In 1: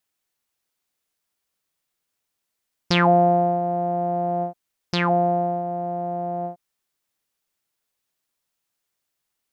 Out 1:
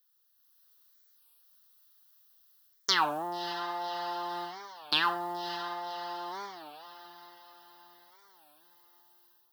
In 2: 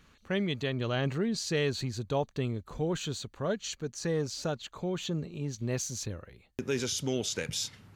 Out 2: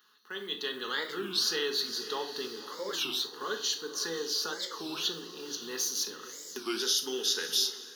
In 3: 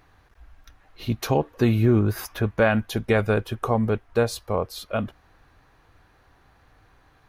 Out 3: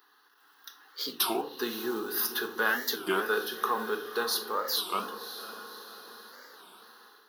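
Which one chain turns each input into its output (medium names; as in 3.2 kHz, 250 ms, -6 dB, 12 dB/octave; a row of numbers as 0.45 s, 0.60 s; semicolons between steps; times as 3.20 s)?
in parallel at +1.5 dB: compression, threshold -32 dBFS; on the sum: static phaser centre 2.3 kHz, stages 6; echo that smears into a reverb 559 ms, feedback 52%, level -12 dB; short-mantissa float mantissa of 6-bit; treble shelf 5.4 kHz +11 dB; simulated room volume 560 m³, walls furnished, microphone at 1.4 m; level rider gain up to 7.5 dB; high-pass 380 Hz 24 dB/octave; treble shelf 12 kHz +3.5 dB; warped record 33 1/3 rpm, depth 250 cents; trim -9 dB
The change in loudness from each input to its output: -10.5 LU, +1.5 LU, -6.5 LU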